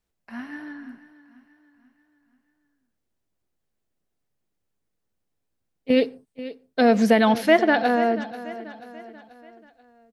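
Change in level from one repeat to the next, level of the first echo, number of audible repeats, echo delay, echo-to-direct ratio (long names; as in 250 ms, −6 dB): −6.5 dB, −15.5 dB, 3, 486 ms, −14.5 dB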